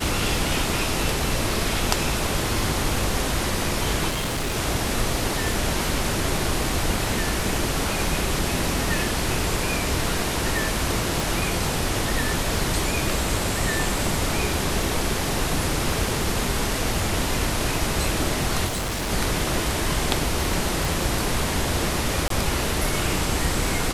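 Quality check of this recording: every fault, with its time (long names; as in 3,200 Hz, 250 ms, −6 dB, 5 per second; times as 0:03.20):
surface crackle 25 per second −28 dBFS
0:04.09–0:04.57: clipping −22.5 dBFS
0:11.20: click
0:18.67–0:19.11: clipping −23.5 dBFS
0:20.85: click
0:22.28–0:22.30: drop-out 23 ms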